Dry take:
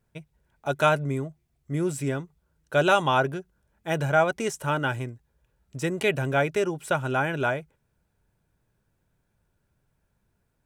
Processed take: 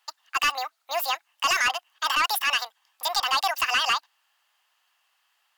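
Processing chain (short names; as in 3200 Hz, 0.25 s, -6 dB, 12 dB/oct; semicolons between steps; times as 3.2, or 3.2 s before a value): HPF 420 Hz 24 dB/oct; overdrive pedal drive 18 dB, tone 6800 Hz, clips at -7.5 dBFS; limiter -16 dBFS, peak gain reduction 8.5 dB; wide varispeed 1.91×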